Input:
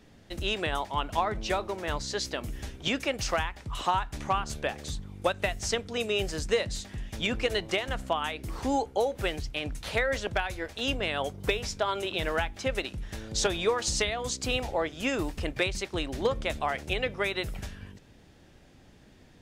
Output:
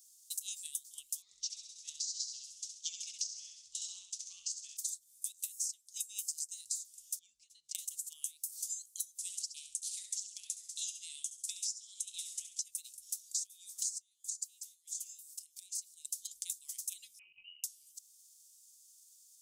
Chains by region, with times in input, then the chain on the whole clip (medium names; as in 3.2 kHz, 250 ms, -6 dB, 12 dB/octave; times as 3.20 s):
1.22–4.77 s: low-pass 6 kHz 24 dB/octave + feedback delay 66 ms, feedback 49%, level -4 dB
7.19–7.75 s: tape spacing loss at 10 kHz 24 dB + compression 16:1, threshold -36 dBFS
9.18–12.62 s: low-pass 8.9 kHz 24 dB/octave + feedback delay 68 ms, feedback 35%, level -6.5 dB
13.98–16.05 s: delay 631 ms -12.5 dB + compression 12:1, threshold -32 dBFS + feedback comb 590 Hz, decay 0.45 s
17.19–17.64 s: frequency inversion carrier 2.9 kHz + tilt EQ -1.5 dB/octave
whole clip: inverse Chebyshev high-pass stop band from 1.7 kHz, stop band 70 dB; transient shaper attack +8 dB, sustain -2 dB; compression 10:1, threshold -51 dBFS; trim +15.5 dB